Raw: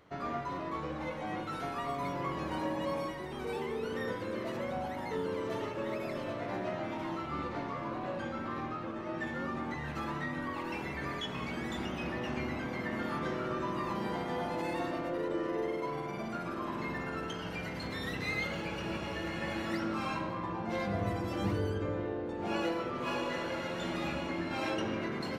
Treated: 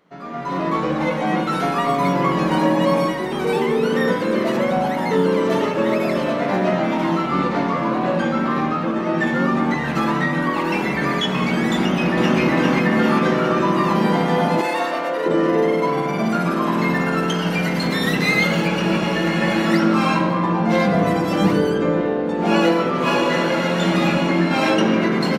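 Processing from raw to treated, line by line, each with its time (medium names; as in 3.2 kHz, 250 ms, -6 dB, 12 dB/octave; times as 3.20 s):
11.77–12.39 s: echo throw 400 ms, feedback 60%, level -1.5 dB
14.61–15.26 s: high-pass 520 Hz
16.26–18.68 s: treble shelf 8.1 kHz +5.5 dB
whole clip: resonant low shelf 130 Hz -9 dB, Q 3; hum notches 50/100/150/200/250/300/350 Hz; level rider gain up to 16.5 dB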